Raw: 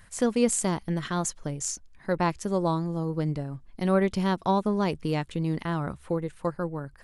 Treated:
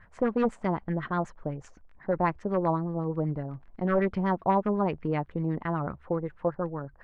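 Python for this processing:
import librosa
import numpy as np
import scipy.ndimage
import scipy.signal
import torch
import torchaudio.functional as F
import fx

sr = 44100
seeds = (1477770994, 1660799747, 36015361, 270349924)

y = 10.0 ** (-17.0 / 20.0) * (np.abs((x / 10.0 ** (-17.0 / 20.0) + 3.0) % 4.0 - 2.0) - 1.0)
y = fx.dmg_crackle(y, sr, seeds[0], per_s=27.0, level_db=-40.0)
y = fx.filter_lfo_lowpass(y, sr, shape='sine', hz=8.0, low_hz=640.0, high_hz=2000.0, q=1.9)
y = F.gain(torch.from_numpy(y), -2.0).numpy()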